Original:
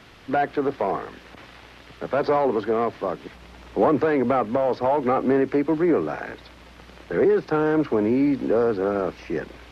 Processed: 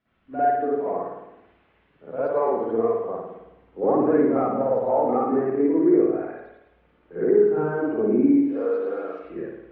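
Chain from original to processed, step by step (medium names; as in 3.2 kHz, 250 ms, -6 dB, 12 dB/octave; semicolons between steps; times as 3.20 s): 8.43–9.19 s: tilt EQ +4.5 dB/octave; spring tank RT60 1.3 s, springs 53 ms, chirp 55 ms, DRR -9.5 dB; spectral contrast expander 1.5:1; trim -8 dB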